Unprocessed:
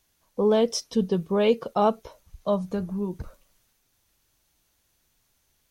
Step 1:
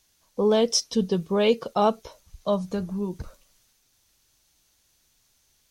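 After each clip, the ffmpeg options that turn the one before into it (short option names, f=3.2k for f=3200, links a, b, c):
-af "equalizer=f=5.5k:w=0.66:g=7"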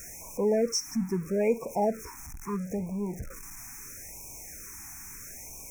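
-af "aeval=exprs='val(0)+0.5*0.0266*sgn(val(0))':c=same,asuperstop=centerf=3700:order=20:qfactor=1.3,afftfilt=real='re*(1-between(b*sr/1024,480*pow(1600/480,0.5+0.5*sin(2*PI*0.76*pts/sr))/1.41,480*pow(1600/480,0.5+0.5*sin(2*PI*0.76*pts/sr))*1.41))':imag='im*(1-between(b*sr/1024,480*pow(1600/480,0.5+0.5*sin(2*PI*0.76*pts/sr))/1.41,480*pow(1600/480,0.5+0.5*sin(2*PI*0.76*pts/sr))*1.41))':win_size=1024:overlap=0.75,volume=-5.5dB"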